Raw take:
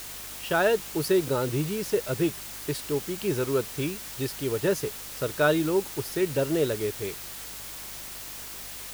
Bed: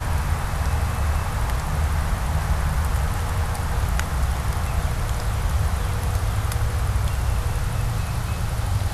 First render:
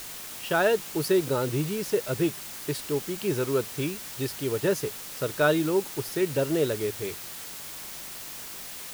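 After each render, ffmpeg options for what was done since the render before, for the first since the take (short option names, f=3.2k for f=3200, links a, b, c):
-af "bandreject=f=50:t=h:w=4,bandreject=f=100:t=h:w=4"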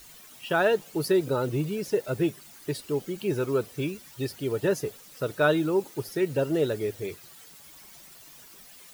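-af "afftdn=nr=13:nf=-40"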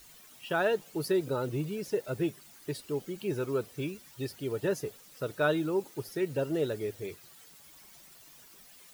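-af "volume=-5dB"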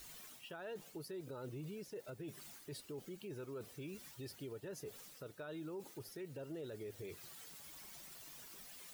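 -af "areverse,acompressor=threshold=-38dB:ratio=6,areverse,alimiter=level_in=15.5dB:limit=-24dB:level=0:latency=1:release=119,volume=-15.5dB"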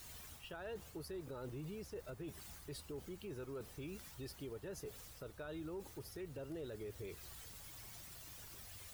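-filter_complex "[1:a]volume=-38dB[a];[0:a][a]amix=inputs=2:normalize=0"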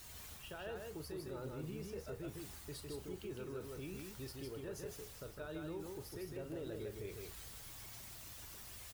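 -filter_complex "[0:a]asplit=2[a][b];[b]adelay=38,volume=-12dB[c];[a][c]amix=inputs=2:normalize=0,asplit=2[d][e];[e]aecho=0:1:156:0.668[f];[d][f]amix=inputs=2:normalize=0"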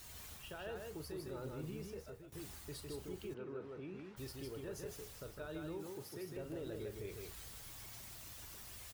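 -filter_complex "[0:a]asplit=3[a][b][c];[a]afade=t=out:st=3.33:d=0.02[d];[b]highpass=150,lowpass=2.1k,afade=t=in:st=3.33:d=0.02,afade=t=out:st=4.16:d=0.02[e];[c]afade=t=in:st=4.16:d=0.02[f];[d][e][f]amix=inputs=3:normalize=0,asettb=1/sr,asplit=3[g][h][i];[g]atrim=end=5.784[j];[h]atrim=start=5.78:end=6.37,asetpts=PTS-STARTPTS,afade=t=in:d=0.004:c=qsin,afade=t=out:st=0.586:d=0.004:c=qsin,highpass=f=110:w=0.5412,highpass=f=110:w=1.3066[k];[i]atrim=start=6.366[l];[j][k]acrossfade=d=0.004:c1=hsin:c2=qsin[m];[m][l]acrossfade=d=0.004:c1=qsin:c2=hsin,asplit=2[n][o];[n]atrim=end=2.32,asetpts=PTS-STARTPTS,afade=t=out:st=1.64:d=0.68:c=qsin:silence=0.141254[p];[o]atrim=start=2.32,asetpts=PTS-STARTPTS,afade=t=in:d=0.004:c=hsin:silence=0.141254[q];[p][q]concat=n=2:v=0:a=1"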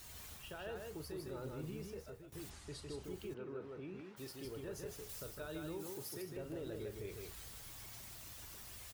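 -filter_complex "[0:a]asplit=3[a][b][c];[a]afade=t=out:st=2.49:d=0.02[d];[b]lowpass=f=9k:w=0.5412,lowpass=f=9k:w=1.3066,afade=t=in:st=2.49:d=0.02,afade=t=out:st=3.03:d=0.02[e];[c]afade=t=in:st=3.03:d=0.02[f];[d][e][f]amix=inputs=3:normalize=0,asettb=1/sr,asplit=3[g][h][i];[g]atrim=end=4.014[j];[h]atrim=start=4.01:end=4.45,asetpts=PTS-STARTPTS,afade=t=in:d=0.004:c=qsin,afade=t=out:st=0.436:d=0.004:c=qsin,highpass=160[k];[i]atrim=start=4.446[l];[j][k]acrossfade=d=0.004:c1=hsin:c2=qsin[m];[m][l]acrossfade=d=0.004:c1=qsin:c2=hsin,asettb=1/sr,asplit=3[n][o][p];[n]atrim=end=5.094[q];[o]atrim=start=5.09:end=6.22,asetpts=PTS-STARTPTS,afade=t=in:d=0.004:c=qsin,afade=t=out:st=1.126:d=0.004:c=qsin,highshelf=f=4.5k:g=8.5[r];[p]atrim=start=6.216[s];[q][r]acrossfade=d=0.004:c1=hsin:c2=qsin[t];[t][s]acrossfade=d=0.004:c1=qsin:c2=hsin"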